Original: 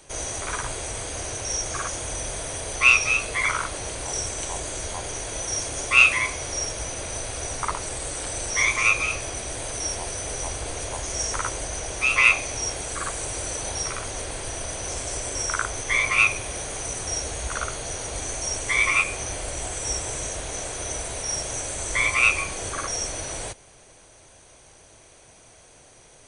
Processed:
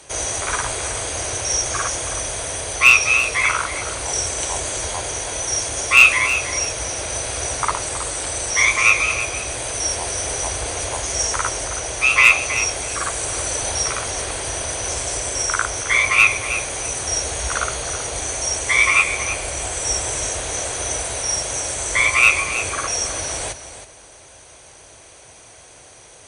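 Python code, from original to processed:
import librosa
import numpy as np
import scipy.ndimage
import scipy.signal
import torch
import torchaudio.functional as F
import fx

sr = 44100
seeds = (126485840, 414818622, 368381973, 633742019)

p1 = scipy.signal.sosfilt(scipy.signal.butter(2, 52.0, 'highpass', fs=sr, output='sos'), x)
p2 = fx.peak_eq(p1, sr, hz=190.0, db=-5.5, octaves=1.9)
p3 = fx.rider(p2, sr, range_db=4, speed_s=2.0)
p4 = p2 + (p3 * 10.0 ** (0.0 / 20.0))
p5 = fx.clip_asym(p4, sr, top_db=-2.5, bottom_db=-1.0)
p6 = p5 + fx.echo_feedback(p5, sr, ms=320, feedback_pct=16, wet_db=-11.5, dry=0)
y = p6 * 10.0 ** (-1.0 / 20.0)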